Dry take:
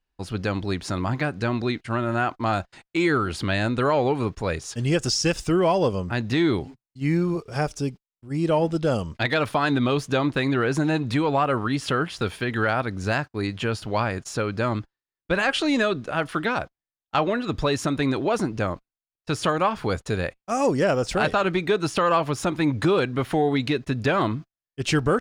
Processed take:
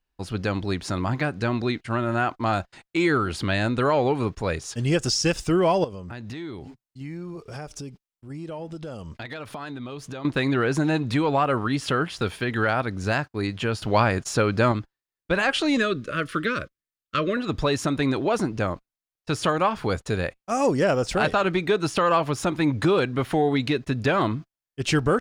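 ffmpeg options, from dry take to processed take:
ffmpeg -i in.wav -filter_complex "[0:a]asettb=1/sr,asplit=3[link_01][link_02][link_03];[link_01]atrim=end=5.844[link_04];[link_02]atrim=start=5.84:end=10.25,asetpts=PTS-STARTPTS,afade=type=in:duration=0.004:curve=qsin,afade=type=out:start_time=4.406:duration=0.004:curve=qsin,acompressor=threshold=-33dB:ratio=5:attack=3.2:release=140:knee=1:detection=peak[link_05];[link_03]atrim=start=10.246[link_06];[link_04][link_05]acrossfade=duration=0.004:curve1=hsin:curve2=qsin[link_07];[link_07][link_06]acrossfade=duration=0.004:curve1=qsin:curve2=hsin,asettb=1/sr,asplit=3[link_08][link_09][link_10];[link_08]atrim=end=15.774[link_11];[link_09]atrim=start=15.77:end=17.37,asetpts=PTS-STARTPTS,afade=type=in:duration=0.004:curve=qsin,afade=type=out:start_time=1.596:duration=0.004:curve=qsin,asuperstop=centerf=810:order=8:qfactor=1.7[link_12];[link_10]atrim=start=17.366[link_13];[link_11][link_12]acrossfade=duration=0.004:curve1=hsin:curve2=qsin[link_14];[link_14][link_13]acrossfade=duration=0.004:curve1=qsin:curve2=hsin,asplit=3[link_15][link_16][link_17];[link_15]atrim=end=13.822[link_18];[link_16]atrim=start=13.818:end=14.722,asetpts=PTS-STARTPTS,volume=4.5dB[link_19];[link_17]atrim=start=14.718[link_20];[link_18][link_19]acrossfade=duration=0.004:curve1=hsin:curve2=hsin[link_21];[link_21][link_20]acrossfade=duration=0.004:curve1=hsin:curve2=hsin" out.wav

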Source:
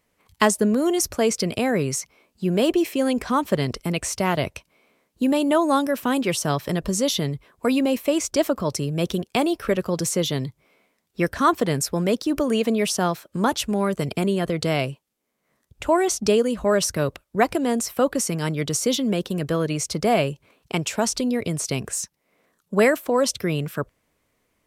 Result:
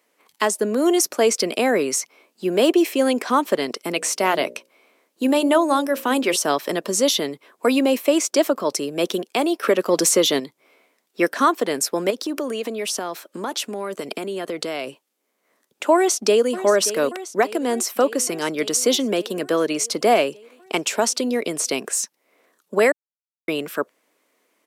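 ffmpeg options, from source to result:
ffmpeg -i in.wav -filter_complex "[0:a]asettb=1/sr,asplit=3[link_01][link_02][link_03];[link_01]atrim=end=3.944[link_04];[link_02]atrim=start=3.94:end=6.36,asetpts=PTS-STARTPTS,afade=type=in:duration=0.004:curve=qsin,afade=type=out:start_time=2.416:duration=0.004:curve=qsin,bandreject=frequency=60:width_type=h:width=6,bandreject=frequency=120:width_type=h:width=6,bandreject=frequency=180:width_type=h:width=6,bandreject=frequency=240:width_type=h:width=6,bandreject=frequency=300:width_type=h:width=6,bandreject=frequency=360:width_type=h:width=6,bandreject=frequency=420:width_type=h:width=6,bandreject=frequency=480:width_type=h:width=6,bandreject=frequency=540:width_type=h:width=6,bandreject=frequency=600:width_type=h:width=6[link_05];[link_03]atrim=start=6.356[link_06];[link_04][link_05]acrossfade=duration=0.004:curve1=hsin:curve2=qsin[link_07];[link_07][link_06]acrossfade=duration=0.004:curve1=qsin:curve2=hsin,asettb=1/sr,asplit=3[link_08][link_09][link_10];[link_08]atrim=end=9.634[link_11];[link_09]atrim=start=9.63:end=10.4,asetpts=PTS-STARTPTS,afade=type=in:duration=0.004:curve=qsin,afade=type=out:start_time=0.766:duration=0.004:curve=qsin,acontrast=77[link_12];[link_10]atrim=start=10.396[link_13];[link_11][link_12]acrossfade=duration=0.004:curve1=hsin:curve2=qsin[link_14];[link_14][link_13]acrossfade=duration=0.004:curve1=qsin:curve2=hsin,asettb=1/sr,asplit=3[link_15][link_16][link_17];[link_15]atrim=end=12.104[link_18];[link_16]atrim=start=12.1:end=14.87,asetpts=PTS-STARTPTS,afade=type=in:duration=0.004:curve=qsin,afade=type=out:start_time=2.766:duration=0.004:curve=qsin,acompressor=threshold=-25dB:ratio=6:attack=3.2:release=140:knee=1:detection=peak[link_19];[link_17]atrim=start=14.866[link_20];[link_18][link_19]acrossfade=duration=0.004:curve1=hsin:curve2=qsin[link_21];[link_21][link_20]acrossfade=duration=0.004:curve1=qsin:curve2=hsin,asplit=2[link_22][link_23];[link_23]afade=type=in:start_time=15.95:duration=0.01,afade=type=out:start_time=16.53:duration=0.01,aecho=0:1:580|1160|1740|2320|2900|3480|4060|4640|5220:0.223872|0.15671|0.109697|0.0767881|0.0537517|0.0376262|0.0263383|0.0184368|0.0129058[link_24];[link_22][link_24]amix=inputs=2:normalize=0,asplit=3[link_25][link_26][link_27];[link_25]atrim=end=22.92,asetpts=PTS-STARTPTS,afade=type=out:start_time=22.916:duration=0.004:curve=hsin[link_28];[link_26]atrim=start=22.92:end=23.48,asetpts=PTS-STARTPTS,volume=0[link_29];[link_27]atrim=start=23.48,asetpts=PTS-STARTPTS,afade=type=in:duration=0.004:curve=hsin[link_30];[link_28][link_29][link_30]concat=n=3:v=0:a=1,highpass=frequency=270:width=0.5412,highpass=frequency=270:width=1.3066,alimiter=limit=-11.5dB:level=0:latency=1:release=488,volume=4.5dB" out.wav

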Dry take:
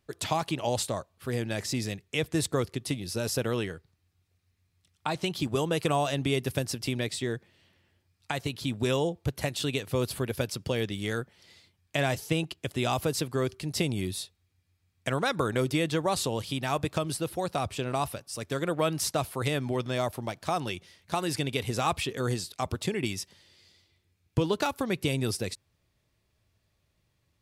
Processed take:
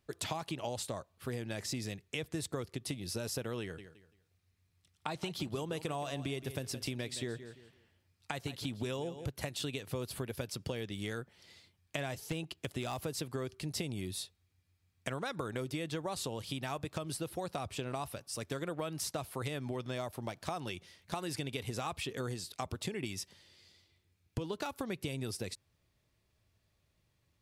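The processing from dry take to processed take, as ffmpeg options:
ffmpeg -i in.wav -filter_complex "[0:a]asettb=1/sr,asplit=3[link_01][link_02][link_03];[link_01]atrim=end=3.614[link_04];[link_02]atrim=start=3.61:end=9.26,asetpts=PTS-STARTPTS,afade=type=in:duration=0.004:curve=qsin,afade=type=out:start_time=5.646:duration=0.004:curve=qsin,aecho=1:1:169|338|507:0.178|0.048|0.013,atrim=end_sample=249165[link_05];[link_03]atrim=start=9.256[link_06];[link_04][link_05]acrossfade=duration=0.004:curve1=hsin:curve2=qsin[link_07];[link_07][link_06]acrossfade=duration=0.004:curve1=qsin:curve2=hsin,asettb=1/sr,asplit=3[link_08][link_09][link_10];[link_08]atrim=end=12.144[link_11];[link_09]atrim=start=12.14:end=13.11,asetpts=PTS-STARTPTS,afade=type=in:duration=0.004:curve=qsin,afade=type=out:start_time=0.966:duration=0.004:curve=qsin,aeval=exprs='0.126*(abs(mod(val(0)/0.126+3,4)-2)-1)':channel_layout=same[link_12];[link_10]atrim=start=13.106[link_13];[link_11][link_12]acrossfade=duration=0.004:curve1=hsin:curve2=qsin[link_14];[link_14][link_13]acrossfade=duration=0.004:curve1=qsin:curve2=hsin,acompressor=threshold=-32dB:ratio=6,volume=-2.5dB" out.wav

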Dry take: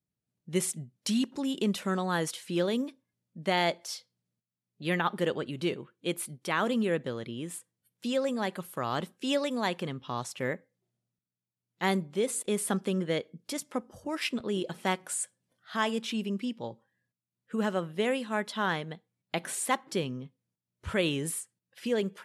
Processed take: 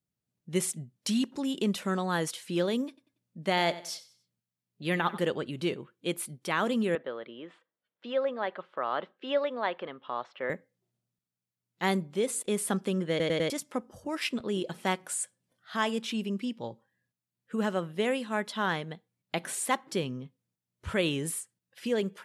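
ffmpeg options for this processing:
ffmpeg -i in.wav -filter_complex "[0:a]asettb=1/sr,asplit=3[link_01][link_02][link_03];[link_01]atrim=end=2.884[link_04];[link_02]atrim=start=2.88:end=5.22,asetpts=PTS-STARTPTS,afade=type=in:duration=0.004:curve=qsin,afade=type=out:start_time=2.336:duration=0.004:curve=qsin,aecho=1:1:93|186|279:0.15|0.0509|0.0173,atrim=end_sample=103194[link_05];[link_03]atrim=start=5.216[link_06];[link_04][link_05]acrossfade=duration=0.004:curve1=hsin:curve2=qsin[link_07];[link_07][link_06]acrossfade=duration=0.004:curve1=qsin:curve2=hsin,asettb=1/sr,asplit=3[link_08][link_09][link_10];[link_08]atrim=end=6.954[link_11];[link_09]atrim=start=6.95:end=10.5,asetpts=PTS-STARTPTS,afade=type=in:duration=0.004:curve=qsin,afade=type=out:start_time=3.546:duration=0.004:curve=qsin,highpass=420,equalizer=frequency=590:width_type=q:width=4:gain=4,equalizer=frequency=1300:width_type=q:width=4:gain=3,equalizer=frequency=2500:width_type=q:width=4:gain=-5,lowpass=frequency=3100:width=0.5412,lowpass=frequency=3100:width=1.3066[link_12];[link_10]atrim=start=10.496[link_13];[link_11][link_12]acrossfade=duration=0.004:curve1=hsin:curve2=qsin[link_14];[link_14][link_13]acrossfade=duration=0.004:curve1=qsin:curve2=hsin,asplit=5[link_15][link_16][link_17][link_18][link_19];[link_15]atrim=end=13.202[link_20];[link_16]atrim=start=13.098:end=13.202[link_21];[link_17]atrim=start=13.098:end=13.202[link_22];[link_18]atrim=start=13.098:end=13.202[link_23];[link_19]atrim=start=13.498[link_24];[link_20][link_21]acrossfade=duration=0.004:curve1=hsin:curve2=hsin[link_25];[link_25][link_22]acrossfade=duration=0.004:curve1=hsin:curve2=hsin[link_26];[link_26][link_23]acrossfade=duration=0.004:curve1=hsin:curve2=hsin[link_27];[link_27][link_24]acrossfade=duration=0.004:curve1=hsin:curve2=hsin" out.wav

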